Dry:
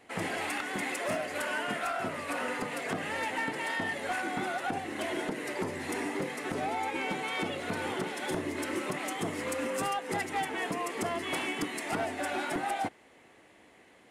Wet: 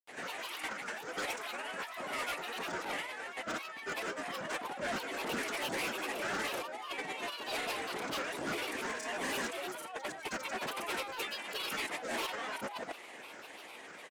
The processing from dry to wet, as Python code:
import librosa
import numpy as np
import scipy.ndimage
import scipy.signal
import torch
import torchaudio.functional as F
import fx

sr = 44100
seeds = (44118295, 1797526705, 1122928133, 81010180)

y = fx.highpass(x, sr, hz=800.0, slope=6)
y = fx.notch(y, sr, hz=1500.0, q=12.0)
y = fx.over_compress(y, sr, threshold_db=-42.0, ratio=-0.5)
y = fx.granulator(y, sr, seeds[0], grain_ms=100.0, per_s=20.0, spray_ms=100.0, spread_st=7)
y = 10.0 ** (-39.5 / 20.0) * np.tanh(y / 10.0 ** (-39.5 / 20.0))
y = F.gain(torch.from_numpy(y), 8.0).numpy()